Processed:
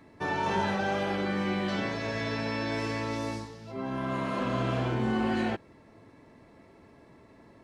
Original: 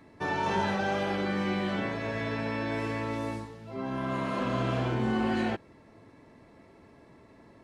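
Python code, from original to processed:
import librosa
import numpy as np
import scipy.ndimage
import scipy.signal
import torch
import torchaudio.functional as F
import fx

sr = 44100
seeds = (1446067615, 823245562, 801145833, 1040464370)

y = fx.peak_eq(x, sr, hz=5300.0, db=10.0, octaves=0.92, at=(1.68, 3.72))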